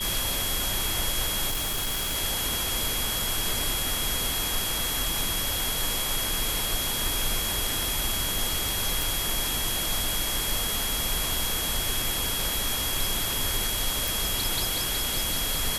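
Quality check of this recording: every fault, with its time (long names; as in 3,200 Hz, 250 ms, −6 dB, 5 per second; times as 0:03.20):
surface crackle 20 per second −33 dBFS
whistle 3,300 Hz −32 dBFS
0:01.49–0:02.17: clipping −24.5 dBFS
0:09.02: click
0:14.08: click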